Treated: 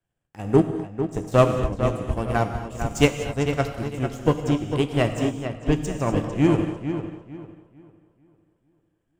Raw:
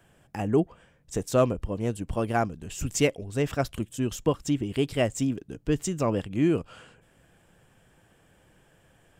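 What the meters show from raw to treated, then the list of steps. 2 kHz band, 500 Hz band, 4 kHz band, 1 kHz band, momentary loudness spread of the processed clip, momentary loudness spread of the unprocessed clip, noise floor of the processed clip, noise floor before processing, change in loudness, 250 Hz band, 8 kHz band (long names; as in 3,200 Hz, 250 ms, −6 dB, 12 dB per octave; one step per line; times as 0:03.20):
+5.0 dB, +4.0 dB, +4.0 dB, +5.5 dB, 9 LU, 9 LU, −72 dBFS, −62 dBFS, +4.0 dB, +4.0 dB, −3.0 dB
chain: low-shelf EQ 99 Hz +8 dB
power curve on the samples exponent 1.4
on a send: feedback echo with a low-pass in the loop 449 ms, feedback 43%, low-pass 3,600 Hz, level −6 dB
on the sum: reverb whose tail is shaped and stops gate 280 ms flat, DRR 3.5 dB
expander for the loud parts 1.5 to 1, over −46 dBFS
level +7 dB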